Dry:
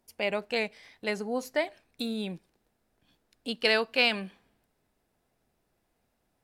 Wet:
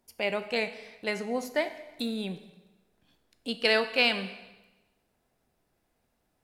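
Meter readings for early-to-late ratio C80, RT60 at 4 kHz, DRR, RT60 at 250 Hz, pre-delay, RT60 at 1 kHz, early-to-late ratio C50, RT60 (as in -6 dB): 14.0 dB, 1.0 s, 9.5 dB, 1.0 s, 5 ms, 1.1 s, 12.0 dB, 1.1 s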